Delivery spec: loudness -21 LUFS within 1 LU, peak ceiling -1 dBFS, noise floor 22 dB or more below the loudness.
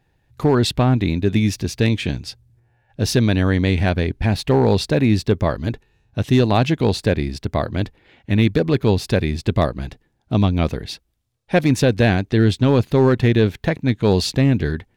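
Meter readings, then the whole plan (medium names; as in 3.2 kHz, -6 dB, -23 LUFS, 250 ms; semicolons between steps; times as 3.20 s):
clipped samples 1.1%; clipping level -7.0 dBFS; loudness -18.5 LUFS; peak level -7.0 dBFS; loudness target -21.0 LUFS
-> clip repair -7 dBFS; trim -2.5 dB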